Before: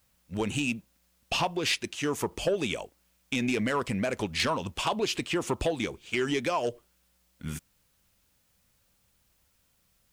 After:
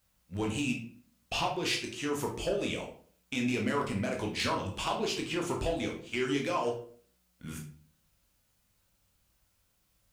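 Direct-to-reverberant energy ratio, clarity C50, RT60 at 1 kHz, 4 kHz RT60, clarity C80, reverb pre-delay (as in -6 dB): 0.0 dB, 7.0 dB, 0.45 s, 0.35 s, 12.0 dB, 13 ms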